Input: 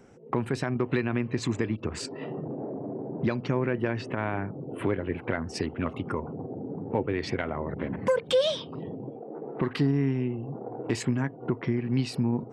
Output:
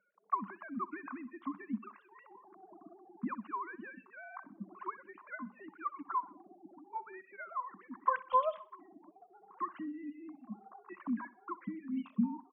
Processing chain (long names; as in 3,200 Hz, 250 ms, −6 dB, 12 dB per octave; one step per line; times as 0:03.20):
three sine waves on the formant tracks
reverb reduction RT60 0.53 s
harmonic generator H 2 −19 dB, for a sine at −5.5 dBFS
pair of resonant band-passes 460 Hz, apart 2.5 octaves
repeating echo 63 ms, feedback 43%, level −18.5 dB
level +9 dB